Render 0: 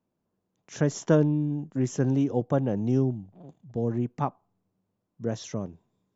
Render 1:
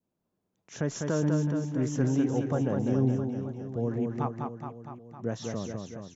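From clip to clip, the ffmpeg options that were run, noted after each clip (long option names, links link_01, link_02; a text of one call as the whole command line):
ffmpeg -i in.wav -af "adynamicequalizer=threshold=0.00708:dfrequency=1400:dqfactor=1.2:tfrequency=1400:tqfactor=1.2:attack=5:release=100:ratio=0.375:range=2.5:mode=boostabove:tftype=bell,alimiter=limit=-15.5dB:level=0:latency=1:release=70,aecho=1:1:200|420|662|928.2|1221:0.631|0.398|0.251|0.158|0.1,volume=-3dB" out.wav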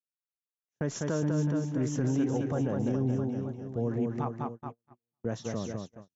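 ffmpeg -i in.wav -af "agate=range=-46dB:threshold=-37dB:ratio=16:detection=peak,alimiter=limit=-20.5dB:level=0:latency=1:release=26" out.wav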